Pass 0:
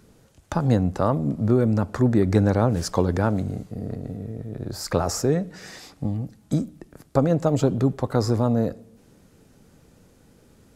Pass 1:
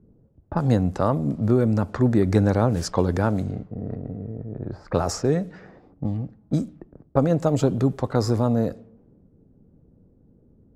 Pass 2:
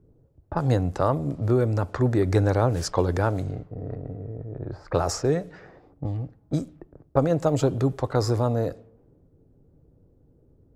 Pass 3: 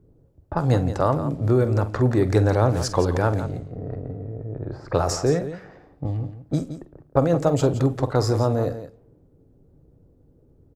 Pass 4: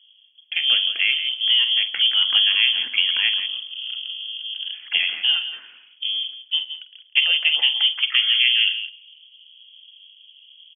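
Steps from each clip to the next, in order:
level-controlled noise filter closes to 350 Hz, open at -19 dBFS
peaking EQ 210 Hz -14 dB 0.39 oct
multi-tap echo 47/170 ms -13.5/-11.5 dB; trim +2 dB
frequency inversion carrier 3.3 kHz; high-pass sweep 230 Hz -> 2.5 kHz, 6.51–8.89 s

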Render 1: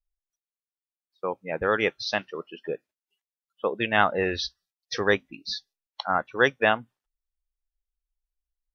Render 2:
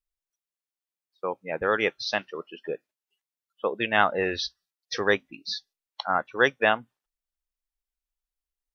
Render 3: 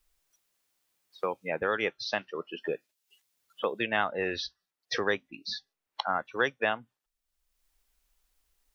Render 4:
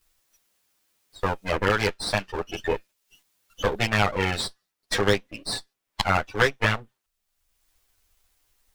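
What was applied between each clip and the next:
bass shelf 150 Hz -7 dB
three bands compressed up and down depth 70%; trim -4.5 dB
comb filter that takes the minimum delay 9.9 ms; trim +8 dB

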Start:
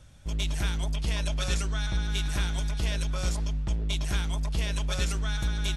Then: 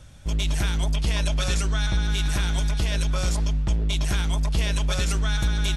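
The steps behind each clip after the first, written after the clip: peak limiter -20 dBFS, peak gain reduction 4.5 dB; trim +6 dB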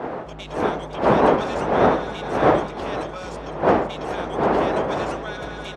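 wind noise 560 Hz -18 dBFS; band-pass filter 860 Hz, Q 0.62; feedback delay 508 ms, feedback 43%, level -13 dB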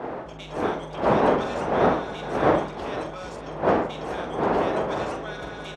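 doubling 45 ms -7.5 dB; trim -4 dB

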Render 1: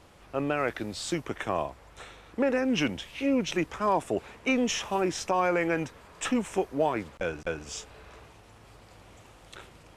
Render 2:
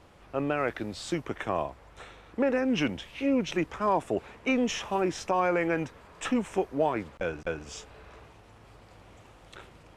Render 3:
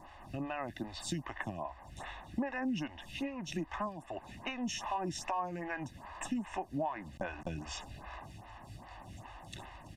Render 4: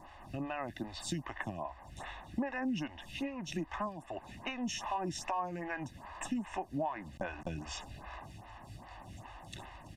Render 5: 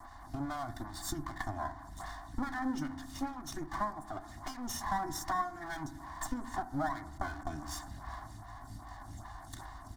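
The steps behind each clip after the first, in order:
treble shelf 4.2 kHz -7 dB
comb 1.1 ms, depth 91%; compression 8:1, threshold -35 dBFS, peak gain reduction 16.5 dB; lamp-driven phase shifter 2.5 Hz; trim +3.5 dB
no audible change
comb filter that takes the minimum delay 2.8 ms; static phaser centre 1.1 kHz, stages 4; reverberation RT60 0.95 s, pre-delay 4 ms, DRR 10.5 dB; trim +5.5 dB

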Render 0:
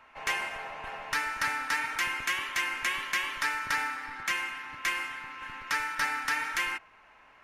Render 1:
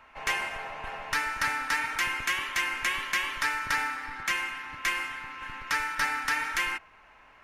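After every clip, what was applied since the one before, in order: bass shelf 84 Hz +7.5 dB; trim +1.5 dB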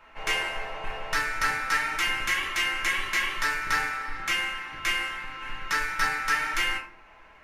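simulated room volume 39 m³, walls mixed, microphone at 0.69 m; trim -1.5 dB

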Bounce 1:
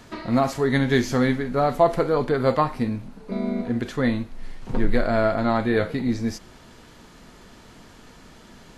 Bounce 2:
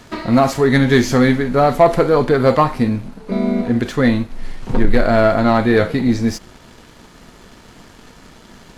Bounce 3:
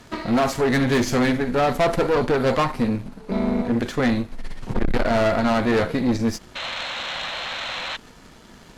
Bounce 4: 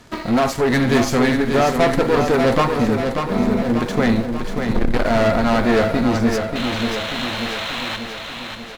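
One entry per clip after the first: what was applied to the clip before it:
waveshaping leveller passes 1; trim +4.5 dB
painted sound noise, 6.55–7.97 s, 490–4300 Hz -26 dBFS; valve stage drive 15 dB, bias 0.7
in parallel at -9.5 dB: small samples zeroed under -29.5 dBFS; on the sum: feedback delay 588 ms, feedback 57%, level -6 dB

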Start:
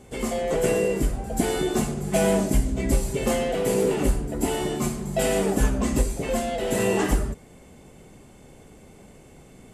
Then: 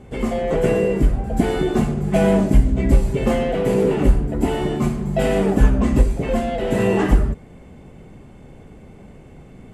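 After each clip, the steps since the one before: tone controls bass +5 dB, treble -13 dB; trim +3.5 dB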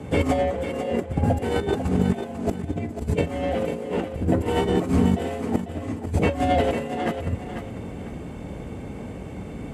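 frequency shift +36 Hz; compressor with a negative ratio -24 dBFS, ratio -0.5; thinning echo 496 ms, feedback 30%, high-pass 190 Hz, level -8 dB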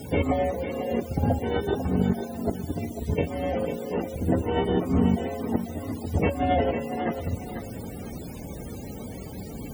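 word length cut 6-bit, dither triangular; loudest bins only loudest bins 64; on a send at -23.5 dB: reverberation RT60 0.65 s, pre-delay 4 ms; on the sum: trim -2.5 dB

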